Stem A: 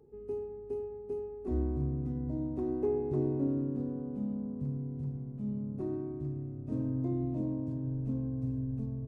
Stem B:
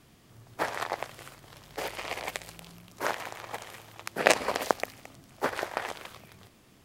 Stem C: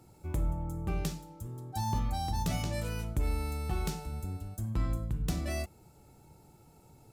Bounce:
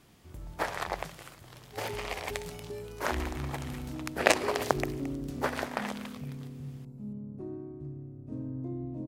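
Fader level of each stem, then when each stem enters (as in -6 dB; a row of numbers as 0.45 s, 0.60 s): -4.5 dB, -1.5 dB, -13.5 dB; 1.60 s, 0.00 s, 0.00 s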